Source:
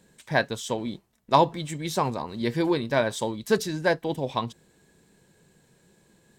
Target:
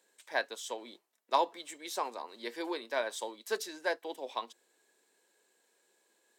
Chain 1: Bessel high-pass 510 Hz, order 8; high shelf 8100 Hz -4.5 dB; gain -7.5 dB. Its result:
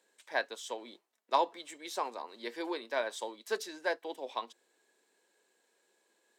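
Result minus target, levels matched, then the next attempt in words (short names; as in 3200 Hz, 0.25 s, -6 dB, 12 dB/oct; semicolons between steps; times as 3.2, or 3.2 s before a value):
8000 Hz band -2.5 dB
Bessel high-pass 510 Hz, order 8; high shelf 8100 Hz +2.5 dB; gain -7.5 dB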